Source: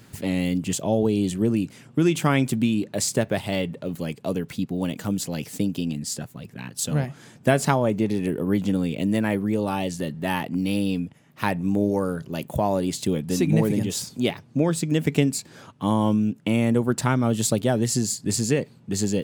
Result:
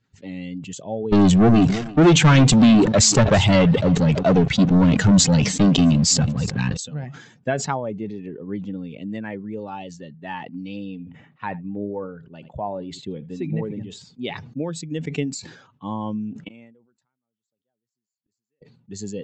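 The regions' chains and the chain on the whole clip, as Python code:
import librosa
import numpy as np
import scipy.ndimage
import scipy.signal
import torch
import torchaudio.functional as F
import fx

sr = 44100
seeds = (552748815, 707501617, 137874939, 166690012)

y = fx.chain(x, sr, fx.low_shelf(hz=92.0, db=11.5),
    fx.leveller(passes=5),
    fx.echo_single(ms=330, db=-16.0), at=(1.12, 6.77))
y = fx.chain(y, sr, fx.high_shelf(hz=5900.0, db=-4.5),
    fx.backlash(play_db=-49.0), at=(8.23, 9.1))
y = fx.chain(y, sr, fx.peak_eq(hz=6000.0, db=-10.5, octaves=0.87),
    fx.echo_single(ms=79, db=-18.5), at=(10.86, 14.24))
y = fx.chain(y, sr, fx.highpass(hz=180.0, slope=6),
    fx.gate_flip(shuts_db=-24.0, range_db=-36), at=(16.48, 18.62))
y = fx.bin_expand(y, sr, power=1.5)
y = scipy.signal.sosfilt(scipy.signal.butter(16, 7600.0, 'lowpass', fs=sr, output='sos'), y)
y = fx.sustainer(y, sr, db_per_s=74.0)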